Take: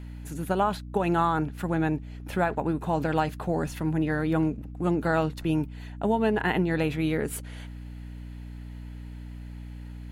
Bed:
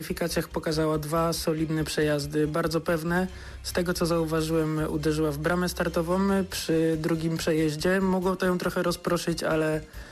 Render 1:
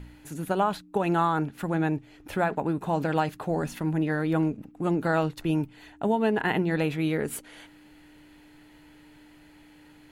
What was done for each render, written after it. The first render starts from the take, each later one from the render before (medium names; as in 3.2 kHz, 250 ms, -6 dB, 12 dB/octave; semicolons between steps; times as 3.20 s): de-hum 60 Hz, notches 4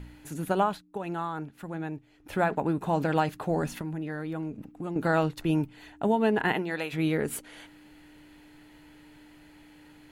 0.62–2.40 s: dip -9 dB, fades 0.20 s; 3.81–4.96 s: compression 2.5:1, threshold -34 dBFS; 6.52–6.92 s: high-pass 330 Hz -> 1.3 kHz 6 dB/octave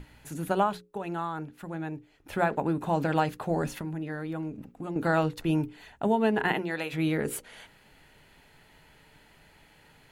hum notches 60/120/180/240/300/360/420/480/540 Hz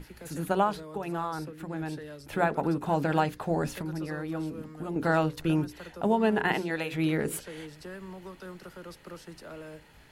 add bed -18.5 dB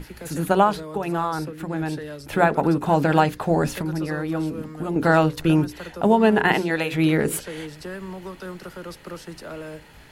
trim +8 dB